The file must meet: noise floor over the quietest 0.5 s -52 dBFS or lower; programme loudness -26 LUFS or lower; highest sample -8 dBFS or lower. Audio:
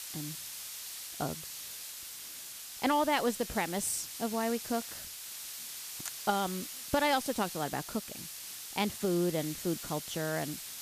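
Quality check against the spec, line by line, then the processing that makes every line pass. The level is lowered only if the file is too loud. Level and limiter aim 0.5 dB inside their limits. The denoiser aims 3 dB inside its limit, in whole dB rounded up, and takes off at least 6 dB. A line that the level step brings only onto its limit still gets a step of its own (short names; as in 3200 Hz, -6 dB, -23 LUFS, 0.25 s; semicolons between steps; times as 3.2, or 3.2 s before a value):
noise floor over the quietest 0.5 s -45 dBFS: fail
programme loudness -34.0 LUFS: OK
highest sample -14.0 dBFS: OK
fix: denoiser 10 dB, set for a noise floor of -45 dBFS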